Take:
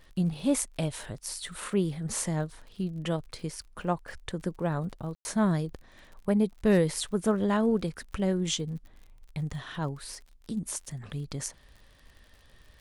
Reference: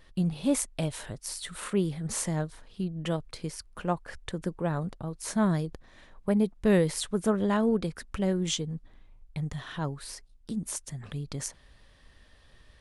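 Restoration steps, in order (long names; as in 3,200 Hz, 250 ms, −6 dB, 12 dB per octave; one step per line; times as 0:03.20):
clipped peaks rebuilt −13 dBFS
click removal
ambience match 0:05.15–0:05.25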